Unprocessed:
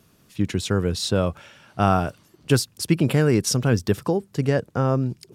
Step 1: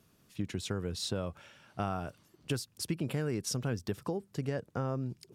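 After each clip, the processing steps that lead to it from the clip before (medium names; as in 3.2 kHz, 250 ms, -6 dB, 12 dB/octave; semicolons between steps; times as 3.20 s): compression 3:1, threshold -23 dBFS, peak gain reduction 8.5 dB; trim -8.5 dB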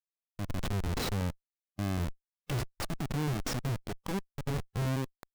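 Schmitt trigger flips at -34.5 dBFS; harmonic-percussive split percussive -6 dB; trim +7.5 dB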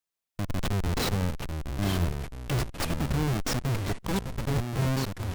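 in parallel at +2 dB: peak limiter -33 dBFS, peak gain reduction 8 dB; on the sum: ever faster or slower copies 602 ms, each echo -4 st, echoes 3, each echo -6 dB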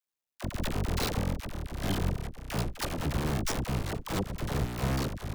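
cycle switcher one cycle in 2, muted; phase dispersion lows, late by 47 ms, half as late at 600 Hz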